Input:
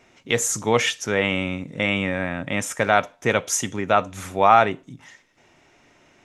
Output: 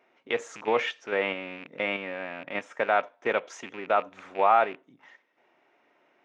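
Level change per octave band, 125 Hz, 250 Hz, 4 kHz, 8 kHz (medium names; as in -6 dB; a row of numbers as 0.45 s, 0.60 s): -21.5 dB, -12.5 dB, -10.5 dB, -24.5 dB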